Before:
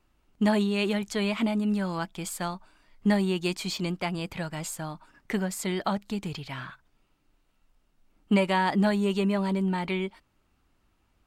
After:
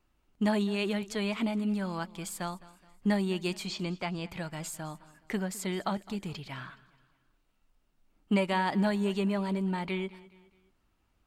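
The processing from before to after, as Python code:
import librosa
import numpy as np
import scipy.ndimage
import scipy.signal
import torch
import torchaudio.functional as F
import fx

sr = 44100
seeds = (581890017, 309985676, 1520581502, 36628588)

y = fx.lowpass(x, sr, hz=6600.0, slope=12, at=(3.66, 4.3))
y = fx.echo_feedback(y, sr, ms=210, feedback_pct=43, wet_db=-20.0)
y = y * librosa.db_to_amplitude(-4.0)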